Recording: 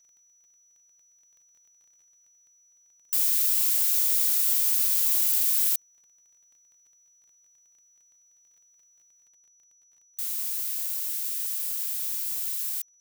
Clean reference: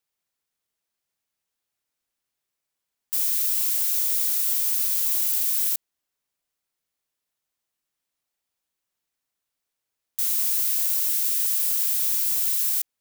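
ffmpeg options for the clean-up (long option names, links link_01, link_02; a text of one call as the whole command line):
ffmpeg -i in.wav -af "adeclick=threshold=4,bandreject=frequency=5900:width=30,asetnsamples=nb_out_samples=441:pad=0,asendcmd='9.27 volume volume 7dB',volume=0dB" out.wav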